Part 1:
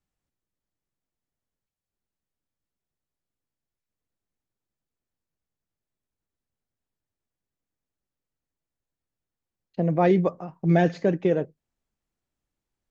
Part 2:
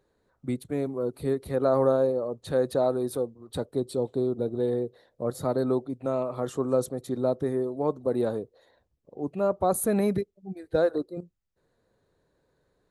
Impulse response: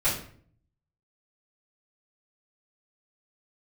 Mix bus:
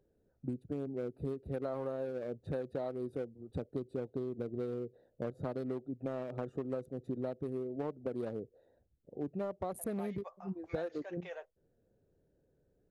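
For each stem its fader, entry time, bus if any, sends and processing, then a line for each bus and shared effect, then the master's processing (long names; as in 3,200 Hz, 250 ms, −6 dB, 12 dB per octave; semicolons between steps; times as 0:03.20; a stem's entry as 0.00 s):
−10.0 dB, 0.00 s, no send, inverse Chebyshev high-pass filter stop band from 260 Hz, stop band 50 dB
−0.5 dB, 0.00 s, no send, adaptive Wiener filter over 41 samples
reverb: not used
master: downward compressor 12 to 1, threshold −34 dBFS, peak gain reduction 16 dB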